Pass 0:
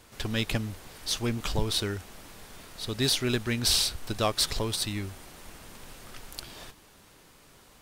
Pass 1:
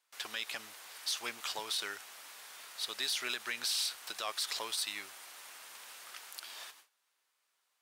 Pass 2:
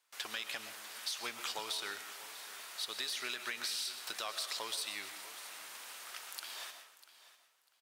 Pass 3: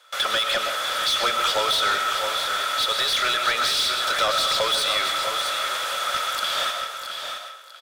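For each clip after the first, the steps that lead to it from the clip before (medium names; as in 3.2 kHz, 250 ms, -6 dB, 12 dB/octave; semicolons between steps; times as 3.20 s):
gate with hold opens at -42 dBFS; high-pass 1 kHz 12 dB/octave; peak limiter -24 dBFS, peak gain reduction 11 dB
compression, threshold -37 dBFS, peak gain reduction 7 dB; feedback delay 646 ms, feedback 20%, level -16 dB; on a send at -9 dB: reverberation RT60 0.55 s, pre-delay 85 ms; on the sum: trim +1.5 dB
small resonant body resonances 560/1300/3400 Hz, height 16 dB, ringing for 25 ms; overdrive pedal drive 22 dB, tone 4.7 kHz, clips at -17 dBFS; delay 670 ms -8 dB; trim +4 dB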